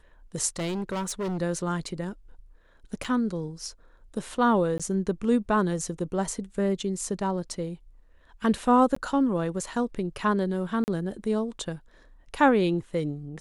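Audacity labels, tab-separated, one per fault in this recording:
0.570000	1.380000	clipping −27 dBFS
3.040000	3.050000	drop-out 5.8 ms
4.780000	4.800000	drop-out 16 ms
8.950000	8.960000	drop-out 14 ms
10.840000	10.880000	drop-out 39 ms

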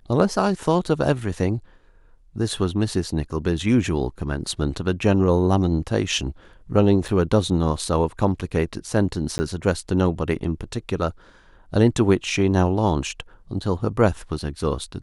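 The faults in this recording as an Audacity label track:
7.080000	7.080000	drop-out 5 ms
9.380000	9.390000	drop-out 10 ms

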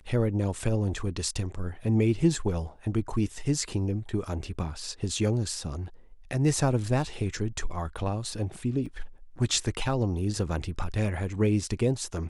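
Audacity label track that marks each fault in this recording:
8.860000	8.860000	drop-out 4.4 ms

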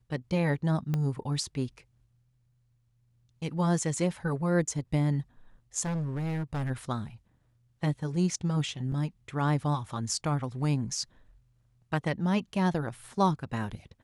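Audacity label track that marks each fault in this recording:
0.940000	0.940000	click −18 dBFS
5.820000	6.710000	clipping −28.5 dBFS
8.920000	8.920000	drop-out 2.9 ms

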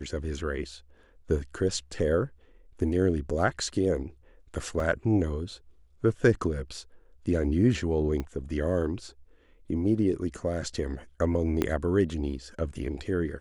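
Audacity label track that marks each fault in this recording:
4.800000	4.800000	drop-out 2.4 ms
8.200000	8.200000	click −20 dBFS
11.620000	11.620000	click −12 dBFS

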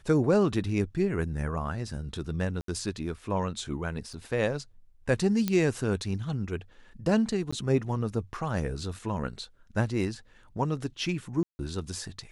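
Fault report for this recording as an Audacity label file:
2.610000	2.680000	drop-out 73 ms
4.130000	4.130000	drop-out 4.9 ms
5.480000	5.480000	click −13 dBFS
7.510000	7.530000	drop-out 15 ms
11.430000	11.590000	drop-out 160 ms

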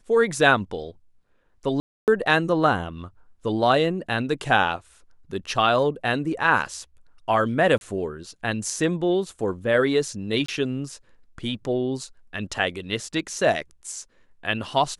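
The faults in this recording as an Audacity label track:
1.800000	2.080000	drop-out 278 ms
7.780000	7.810000	drop-out 31 ms
10.460000	10.480000	drop-out 24 ms

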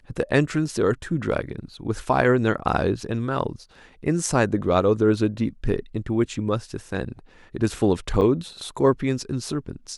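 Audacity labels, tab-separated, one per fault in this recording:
8.210000	8.220000	drop-out 6.9 ms

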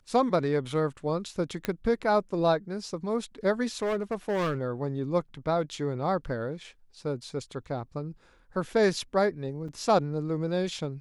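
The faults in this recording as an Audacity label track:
1.650000	1.650000	click −15 dBFS
3.820000	4.590000	clipping −24.5 dBFS
9.680000	9.680000	drop-out 4.9 ms

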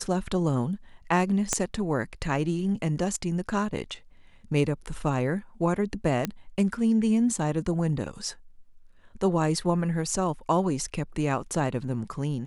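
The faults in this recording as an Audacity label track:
1.530000	1.530000	click −10 dBFS
6.250000	6.250000	click −12 dBFS

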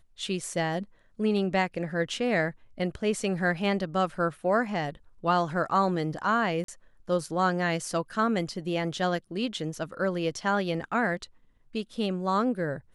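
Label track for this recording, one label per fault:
6.640000	6.680000	drop-out 43 ms

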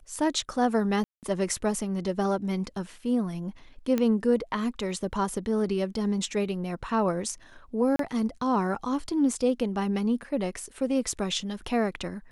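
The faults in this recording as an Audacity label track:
1.040000	1.230000	drop-out 188 ms
3.980000	3.980000	click −14 dBFS
7.960000	7.990000	drop-out 33 ms

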